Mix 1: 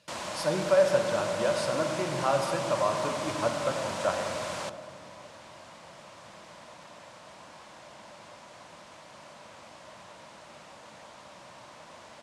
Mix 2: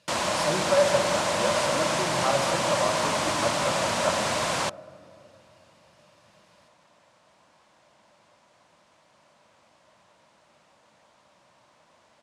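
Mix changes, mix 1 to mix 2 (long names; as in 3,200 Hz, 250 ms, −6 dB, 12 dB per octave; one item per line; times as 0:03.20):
first sound +10.0 dB
second sound −11.5 dB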